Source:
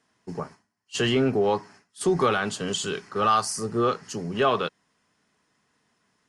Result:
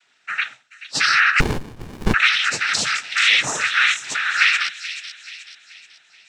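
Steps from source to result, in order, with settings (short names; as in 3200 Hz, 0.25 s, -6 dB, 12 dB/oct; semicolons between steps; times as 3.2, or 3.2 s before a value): four-band scrambler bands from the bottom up 4123; in parallel at +2 dB: limiter -20 dBFS, peak gain reduction 10 dB; on the sum: noise vocoder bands 12; thin delay 0.431 s, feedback 45%, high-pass 3700 Hz, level -6 dB; 1.4–2.14 running maximum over 65 samples; gain +2 dB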